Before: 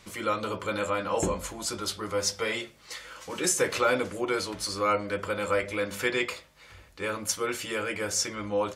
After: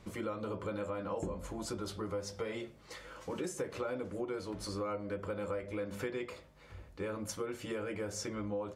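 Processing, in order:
tilt shelving filter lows +7.5 dB, about 1,100 Hz
downward compressor 5 to 1, threshold −31 dBFS, peak gain reduction 14 dB
level −4.5 dB

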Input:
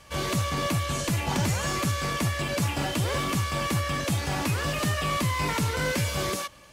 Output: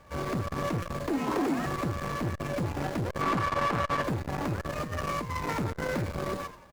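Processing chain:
running median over 15 samples
mains-hum notches 50/100/150 Hz
0:01.09–0:01.66: frequency shifter +160 Hz
0:03.21–0:04.03: mid-hump overdrive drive 22 dB, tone 2,200 Hz, clips at −17.5 dBFS
0:04.78–0:05.53: compressor whose output falls as the input rises −30 dBFS, ratio −0.5
echo with shifted repeats 85 ms, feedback 35%, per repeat −110 Hz, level −13 dB
buffer that repeats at 0:00.82, samples 256, times 5
saturating transformer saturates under 440 Hz

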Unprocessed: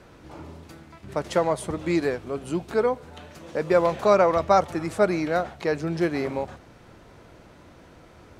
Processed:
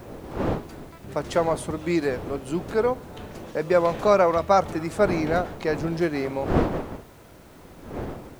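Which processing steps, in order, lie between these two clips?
wind on the microphone 480 Hz −33 dBFS
bit-depth reduction 10 bits, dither triangular

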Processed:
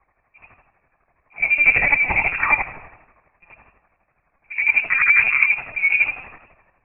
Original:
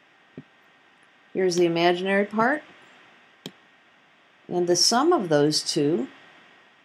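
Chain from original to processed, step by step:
reversed piece by piece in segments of 57 ms
low-shelf EQ 440 Hz +5.5 dB
transient designer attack −9 dB, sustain +9 dB
random phases in short frames
square-wave tremolo 12 Hz, depth 60%, duty 40%
in parallel at −4 dB: soft clipping −16 dBFS, distortion −13 dB
on the sum: high-frequency loss of the air 54 metres
delay with a high-pass on its return 226 ms, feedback 34%, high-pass 1,700 Hz, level −18 dB
convolution reverb RT60 1.0 s, pre-delay 3 ms, DRR 16 dB
voice inversion scrambler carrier 2,700 Hz
linear-prediction vocoder at 8 kHz pitch kept
multiband upward and downward expander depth 40%
level −1.5 dB

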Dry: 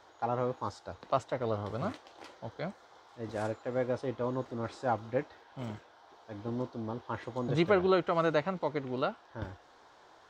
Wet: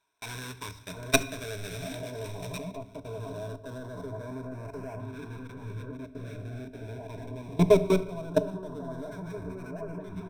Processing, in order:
each half-wave held at its own peak
slap from a distant wall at 280 metres, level −11 dB
noise gate with hold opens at −42 dBFS
delay that swaps between a low-pass and a high-pass 706 ms, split 1,300 Hz, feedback 63%, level −8 dB
output level in coarse steps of 21 dB
EQ curve with evenly spaced ripples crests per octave 1.6, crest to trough 17 dB
auto-filter notch saw up 0.2 Hz 520–3,800 Hz
high-shelf EQ 2,000 Hz +6.5 dB, from 0:02.58 −6.5 dB, from 0:03.78 −12 dB
convolution reverb RT60 0.95 s, pre-delay 6 ms, DRR 12.5 dB
linearly interpolated sample-rate reduction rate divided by 2×
level +1.5 dB

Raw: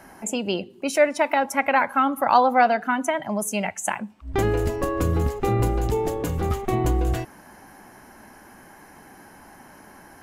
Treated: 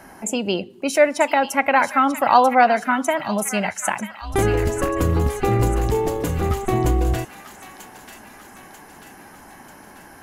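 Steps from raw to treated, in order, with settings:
delay with a high-pass on its return 940 ms, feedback 54%, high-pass 1,600 Hz, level −8.5 dB
level +3 dB

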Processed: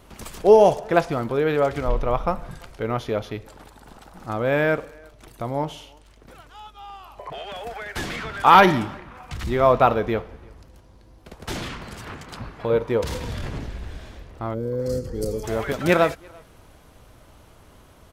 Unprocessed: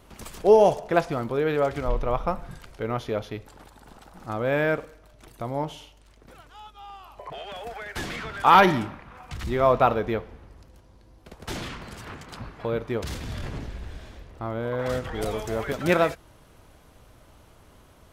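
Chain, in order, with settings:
0:12.70–0:13.30: hollow resonant body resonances 500/940 Hz, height 11 dB
far-end echo of a speakerphone 340 ms, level −27 dB
0:14.54–0:15.44: gain on a spectral selection 560–4,100 Hz −18 dB
level +3 dB

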